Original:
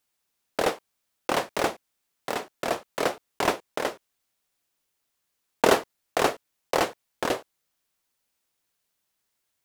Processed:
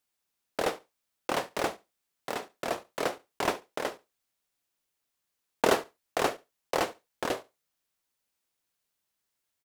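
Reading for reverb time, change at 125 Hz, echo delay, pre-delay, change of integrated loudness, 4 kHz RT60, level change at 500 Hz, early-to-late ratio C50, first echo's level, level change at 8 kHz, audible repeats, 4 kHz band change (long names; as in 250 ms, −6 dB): no reverb audible, −4.5 dB, 70 ms, no reverb audible, −4.5 dB, no reverb audible, −4.5 dB, no reverb audible, −21.0 dB, −4.5 dB, 1, −4.5 dB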